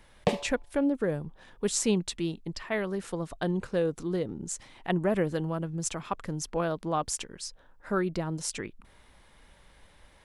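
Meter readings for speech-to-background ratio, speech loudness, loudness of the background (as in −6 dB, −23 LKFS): 1.0 dB, −31.5 LKFS, −32.5 LKFS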